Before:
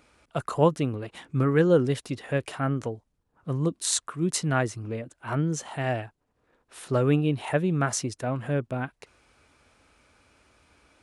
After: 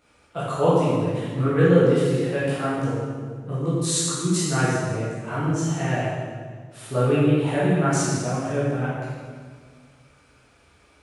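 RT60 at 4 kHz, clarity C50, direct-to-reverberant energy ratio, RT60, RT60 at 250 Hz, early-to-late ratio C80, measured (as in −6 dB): 1.4 s, −2.5 dB, −10.0 dB, 1.7 s, 2.0 s, 0.5 dB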